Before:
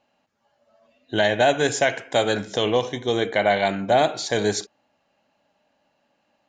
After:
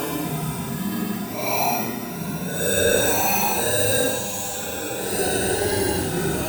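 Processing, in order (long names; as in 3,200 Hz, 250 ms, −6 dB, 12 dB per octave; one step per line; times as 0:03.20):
samples in bit-reversed order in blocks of 32 samples
granular cloud, spray 100 ms, pitch spread up and down by 7 semitones
tuned comb filter 100 Hz, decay 1.8 s, mix 70%
sine wavefolder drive 8 dB, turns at −15.5 dBFS
extreme stretch with random phases 9.7×, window 0.05 s, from 0:03.70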